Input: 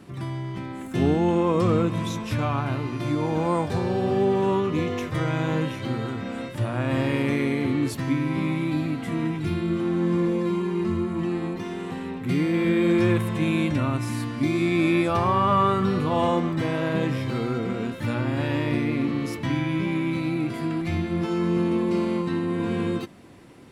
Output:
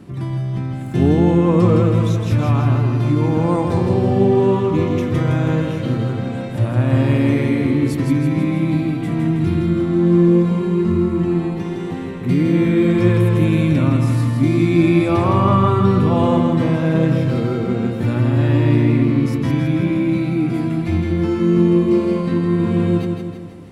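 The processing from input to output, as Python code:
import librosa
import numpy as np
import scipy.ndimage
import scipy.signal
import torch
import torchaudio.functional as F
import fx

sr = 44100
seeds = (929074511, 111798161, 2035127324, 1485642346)

p1 = fx.low_shelf(x, sr, hz=440.0, db=9.0)
y = p1 + fx.echo_feedback(p1, sr, ms=162, feedback_pct=53, wet_db=-5, dry=0)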